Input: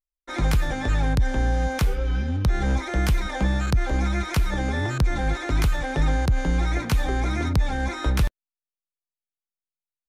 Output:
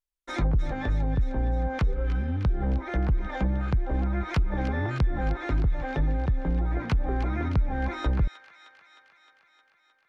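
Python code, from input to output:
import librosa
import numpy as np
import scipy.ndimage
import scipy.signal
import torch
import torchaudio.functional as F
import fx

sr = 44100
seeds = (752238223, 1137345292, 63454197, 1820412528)

p1 = fx.env_lowpass_down(x, sr, base_hz=380.0, full_db=-15.5)
p2 = fx.rider(p1, sr, range_db=4, speed_s=0.5)
p3 = p2 + fx.echo_wet_highpass(p2, sr, ms=309, feedback_pct=69, hz=1700.0, wet_db=-9.5, dry=0)
y = p3 * 10.0 ** (-3.0 / 20.0)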